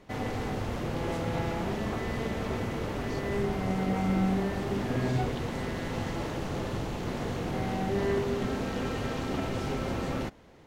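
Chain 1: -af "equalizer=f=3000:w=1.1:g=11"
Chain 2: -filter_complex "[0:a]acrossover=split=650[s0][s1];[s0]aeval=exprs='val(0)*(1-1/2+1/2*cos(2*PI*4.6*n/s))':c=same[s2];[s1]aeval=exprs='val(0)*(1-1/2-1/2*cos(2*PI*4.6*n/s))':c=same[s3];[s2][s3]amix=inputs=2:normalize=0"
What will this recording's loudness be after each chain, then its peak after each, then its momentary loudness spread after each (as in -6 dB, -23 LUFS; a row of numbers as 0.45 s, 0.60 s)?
-30.0 LUFS, -36.5 LUFS; -15.5 dBFS, -19.0 dBFS; 4 LU, 6 LU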